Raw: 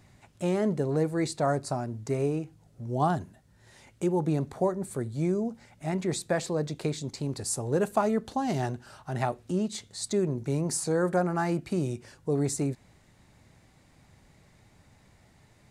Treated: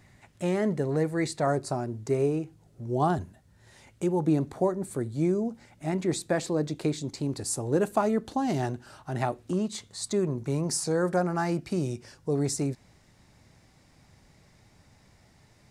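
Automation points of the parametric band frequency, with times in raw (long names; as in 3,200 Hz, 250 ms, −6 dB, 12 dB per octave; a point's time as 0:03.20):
parametric band +6.5 dB 0.35 octaves
1,900 Hz
from 0:01.47 370 Hz
from 0:03.18 83 Hz
from 0:04.27 310 Hz
from 0:09.53 1,100 Hz
from 0:10.64 5,300 Hz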